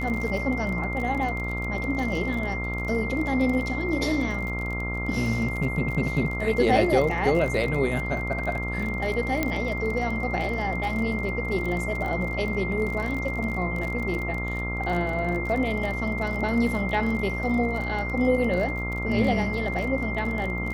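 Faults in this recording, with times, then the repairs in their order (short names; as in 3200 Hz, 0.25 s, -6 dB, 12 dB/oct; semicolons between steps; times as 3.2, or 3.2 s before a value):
buzz 60 Hz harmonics 23 -31 dBFS
crackle 31/s -30 dBFS
tone 2100 Hz -31 dBFS
9.43 pop -10 dBFS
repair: de-click; de-hum 60 Hz, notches 23; notch 2100 Hz, Q 30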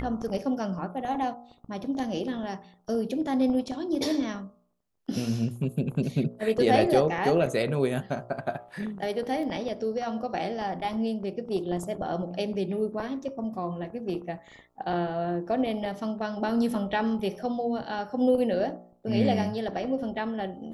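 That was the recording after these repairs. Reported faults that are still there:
9.43 pop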